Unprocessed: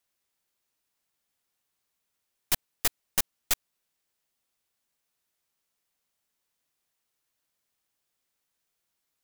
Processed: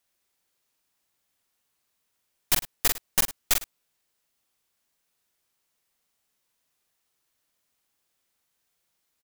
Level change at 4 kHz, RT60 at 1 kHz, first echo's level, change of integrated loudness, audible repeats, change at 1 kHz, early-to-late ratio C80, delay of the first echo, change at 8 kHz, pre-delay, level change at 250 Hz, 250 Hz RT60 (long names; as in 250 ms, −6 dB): +4.0 dB, no reverb audible, −5.0 dB, +4.0 dB, 2, +4.0 dB, no reverb audible, 45 ms, +4.0 dB, no reverb audible, +4.5 dB, no reverb audible